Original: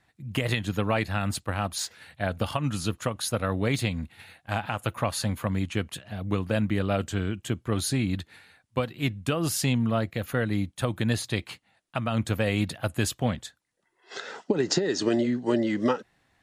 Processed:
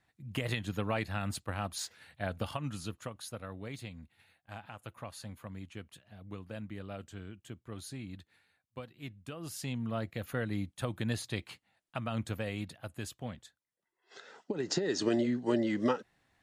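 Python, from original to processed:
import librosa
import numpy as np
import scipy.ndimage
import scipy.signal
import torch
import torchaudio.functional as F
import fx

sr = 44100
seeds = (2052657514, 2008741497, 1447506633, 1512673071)

y = fx.gain(x, sr, db=fx.line((2.37, -7.5), (3.59, -17.0), (9.33, -17.0), (10.1, -8.0), (12.11, -8.0), (12.8, -14.5), (14.31, -14.5), (14.91, -5.0)))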